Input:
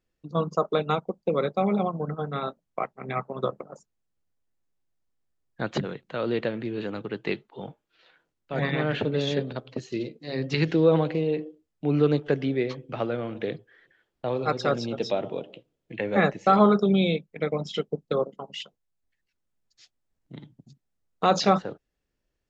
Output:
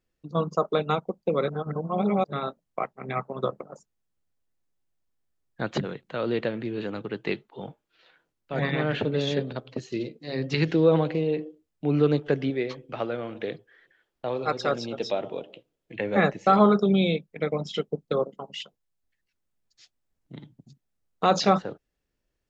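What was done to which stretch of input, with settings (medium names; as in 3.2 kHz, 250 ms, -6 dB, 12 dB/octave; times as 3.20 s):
1.48–2.33 s: reverse
12.50–15.96 s: peaking EQ 120 Hz -5.5 dB 2.6 oct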